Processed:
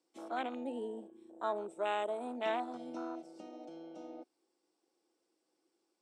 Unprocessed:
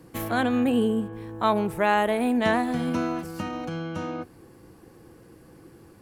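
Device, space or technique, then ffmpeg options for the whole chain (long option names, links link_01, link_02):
phone speaker on a table: -filter_complex "[0:a]afwtdn=0.0447,asettb=1/sr,asplit=3[link_01][link_02][link_03];[link_01]atrim=end=1.064[link_04];[link_02]atrim=start=1.06:end=2.27,asetpts=PTS-STARTPTS,afade=type=in:duration=0.004:curve=qsin,afade=type=out:start_time=1.206:duration=0.004:curve=qsin,equalizer=frequency=800:width_type=o:width=0.33:gain=-5,equalizer=frequency=2000:width_type=o:width=0.33:gain=-4,equalizer=frequency=5000:width_type=o:width=0.33:gain=-8,equalizer=frequency=8000:width_type=o:width=0.33:gain=10[link_05];[link_03]atrim=start=2.266[link_06];[link_04][link_05]acrossfade=duration=0.004:curve1=hsin:curve2=qsin[link_07];[link_07][link_06]acrossfade=duration=0.004:curve1=qsin:curve2=hsin,highpass=frequency=350:width=0.5412,highpass=frequency=350:width=1.3066,equalizer=frequency=470:width_type=q:width=4:gain=-8,equalizer=frequency=1100:width_type=q:width=4:gain=-6,equalizer=frequency=1700:width_type=q:width=4:gain=-10,equalizer=frequency=3600:width_type=q:width=4:gain=6,equalizer=frequency=5400:width_type=q:width=4:gain=9,equalizer=frequency=8300:width_type=q:width=4:gain=9,lowpass=frequency=8700:width=0.5412,lowpass=frequency=8700:width=1.3066,volume=-7.5dB"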